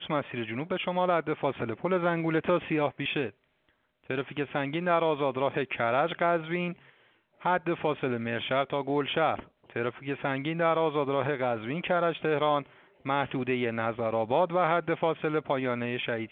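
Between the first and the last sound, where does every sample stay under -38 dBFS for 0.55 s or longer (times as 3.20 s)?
3.29–4.10 s
6.73–7.43 s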